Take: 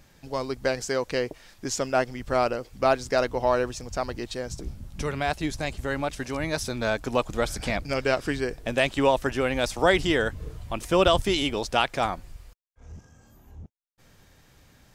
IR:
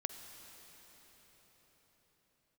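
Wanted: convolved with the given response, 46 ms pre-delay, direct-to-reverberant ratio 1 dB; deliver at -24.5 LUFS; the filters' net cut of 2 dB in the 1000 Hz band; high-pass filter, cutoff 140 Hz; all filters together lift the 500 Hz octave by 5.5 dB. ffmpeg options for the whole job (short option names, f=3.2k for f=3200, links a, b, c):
-filter_complex "[0:a]highpass=140,equalizer=f=500:t=o:g=9,equalizer=f=1k:t=o:g=-7.5,asplit=2[a][b];[1:a]atrim=start_sample=2205,adelay=46[c];[b][c]afir=irnorm=-1:irlink=0,volume=-0.5dB[d];[a][d]amix=inputs=2:normalize=0,volume=-3.5dB"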